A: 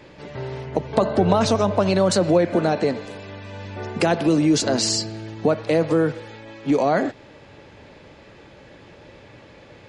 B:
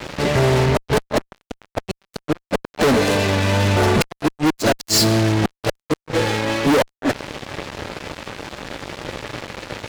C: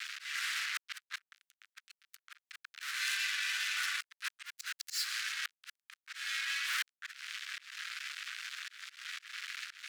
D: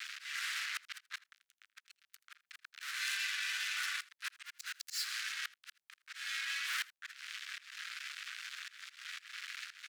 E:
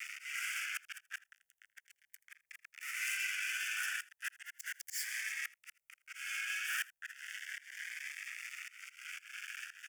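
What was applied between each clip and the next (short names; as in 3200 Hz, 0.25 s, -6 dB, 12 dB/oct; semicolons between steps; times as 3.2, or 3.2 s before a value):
wow and flutter 24 cents; flipped gate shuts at -10 dBFS, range -35 dB; fuzz box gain 37 dB, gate -44 dBFS
steep high-pass 1400 Hz 48 dB/oct; auto swell 0.265 s; three-band squash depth 40%; gain -8 dB
echo 81 ms -21.5 dB; gain -2.5 dB
fixed phaser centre 1100 Hz, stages 6; cascading phaser rising 0.35 Hz; gain +5 dB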